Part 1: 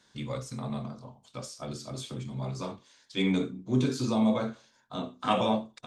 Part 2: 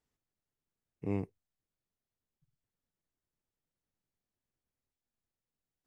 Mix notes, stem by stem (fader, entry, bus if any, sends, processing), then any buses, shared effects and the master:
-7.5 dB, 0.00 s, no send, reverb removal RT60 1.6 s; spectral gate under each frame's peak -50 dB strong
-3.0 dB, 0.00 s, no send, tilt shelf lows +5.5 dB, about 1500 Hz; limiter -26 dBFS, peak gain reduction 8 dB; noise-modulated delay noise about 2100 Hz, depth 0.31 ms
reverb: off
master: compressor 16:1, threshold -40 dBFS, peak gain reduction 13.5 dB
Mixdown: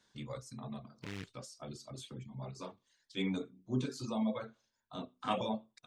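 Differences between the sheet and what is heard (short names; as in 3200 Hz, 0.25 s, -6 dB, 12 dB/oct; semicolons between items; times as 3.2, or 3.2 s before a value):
stem 2 -3.0 dB -> -9.0 dB; master: missing compressor 16:1, threshold -40 dBFS, peak gain reduction 13.5 dB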